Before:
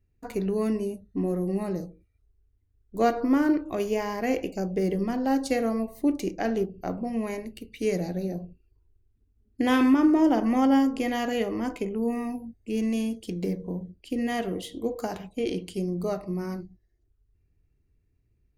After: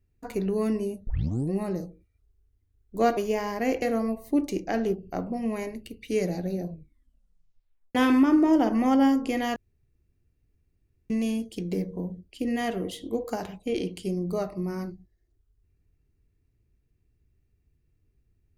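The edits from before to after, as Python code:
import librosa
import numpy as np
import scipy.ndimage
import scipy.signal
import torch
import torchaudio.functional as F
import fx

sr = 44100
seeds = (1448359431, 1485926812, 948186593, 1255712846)

y = fx.edit(x, sr, fx.tape_start(start_s=1.07, length_s=0.45),
    fx.cut(start_s=3.17, length_s=0.62),
    fx.cut(start_s=4.44, length_s=1.09),
    fx.tape_stop(start_s=8.37, length_s=1.29),
    fx.room_tone_fill(start_s=11.27, length_s=1.54), tone=tone)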